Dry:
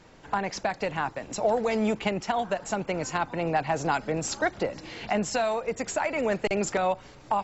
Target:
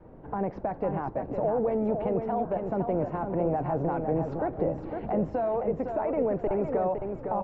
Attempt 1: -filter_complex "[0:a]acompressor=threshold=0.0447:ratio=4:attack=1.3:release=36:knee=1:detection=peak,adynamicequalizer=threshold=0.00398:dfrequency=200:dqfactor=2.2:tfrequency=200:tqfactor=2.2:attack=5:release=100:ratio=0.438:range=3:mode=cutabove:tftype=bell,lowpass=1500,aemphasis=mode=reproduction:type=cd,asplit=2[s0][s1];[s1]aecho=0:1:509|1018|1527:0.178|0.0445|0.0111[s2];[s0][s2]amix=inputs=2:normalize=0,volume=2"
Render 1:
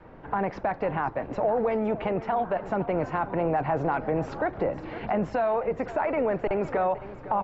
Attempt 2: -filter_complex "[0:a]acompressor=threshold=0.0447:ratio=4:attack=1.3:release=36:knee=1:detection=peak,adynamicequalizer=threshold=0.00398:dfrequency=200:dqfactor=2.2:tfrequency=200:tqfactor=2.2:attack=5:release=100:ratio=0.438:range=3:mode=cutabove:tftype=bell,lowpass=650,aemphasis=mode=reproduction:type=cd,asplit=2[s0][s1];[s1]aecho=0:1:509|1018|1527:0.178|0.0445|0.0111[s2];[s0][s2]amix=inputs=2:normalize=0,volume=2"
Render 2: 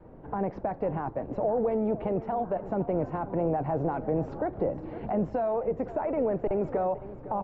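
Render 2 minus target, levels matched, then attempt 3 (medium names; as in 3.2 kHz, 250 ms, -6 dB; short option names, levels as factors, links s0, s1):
echo-to-direct -9 dB
-filter_complex "[0:a]acompressor=threshold=0.0447:ratio=4:attack=1.3:release=36:knee=1:detection=peak,adynamicequalizer=threshold=0.00398:dfrequency=200:dqfactor=2.2:tfrequency=200:tqfactor=2.2:attack=5:release=100:ratio=0.438:range=3:mode=cutabove:tftype=bell,lowpass=650,aemphasis=mode=reproduction:type=cd,asplit=2[s0][s1];[s1]aecho=0:1:509|1018|1527:0.501|0.125|0.0313[s2];[s0][s2]amix=inputs=2:normalize=0,volume=2"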